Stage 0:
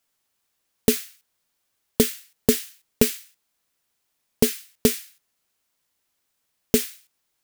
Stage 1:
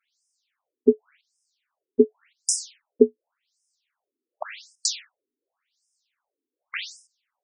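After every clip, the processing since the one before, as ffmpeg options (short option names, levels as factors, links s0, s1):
-af "afftfilt=real='re*between(b*sr/1024,310*pow(7100/310,0.5+0.5*sin(2*PI*0.89*pts/sr))/1.41,310*pow(7100/310,0.5+0.5*sin(2*PI*0.89*pts/sr))*1.41)':imag='im*between(b*sr/1024,310*pow(7100/310,0.5+0.5*sin(2*PI*0.89*pts/sr))/1.41,310*pow(7100/310,0.5+0.5*sin(2*PI*0.89*pts/sr))*1.41)':win_size=1024:overlap=0.75,volume=2.11"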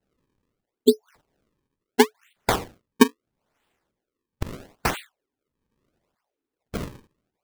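-filter_complex "[0:a]asplit=2[s0][s1];[s1]alimiter=limit=0.266:level=0:latency=1,volume=0.794[s2];[s0][s2]amix=inputs=2:normalize=0,acrusher=samples=36:mix=1:aa=0.000001:lfo=1:lforange=57.6:lforate=0.75,volume=0.75"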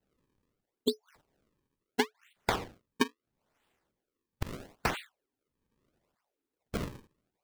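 -filter_complex "[0:a]acrossover=split=1100|5500[s0][s1][s2];[s0]acompressor=threshold=0.0501:ratio=4[s3];[s1]acompressor=threshold=0.0447:ratio=4[s4];[s2]acompressor=threshold=0.00631:ratio=4[s5];[s3][s4][s5]amix=inputs=3:normalize=0,volume=0.708"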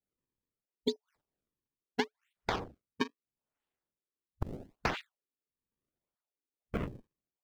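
-af "afwtdn=0.00631,alimiter=limit=0.141:level=0:latency=1:release=91"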